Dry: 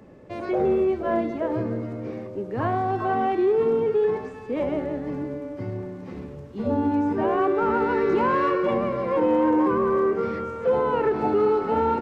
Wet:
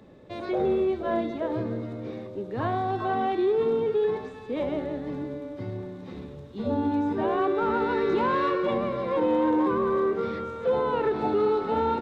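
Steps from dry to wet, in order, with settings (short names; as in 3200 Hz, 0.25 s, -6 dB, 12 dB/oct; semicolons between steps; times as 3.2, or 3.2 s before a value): bell 3700 Hz +14 dB 0.29 oct; gain -3 dB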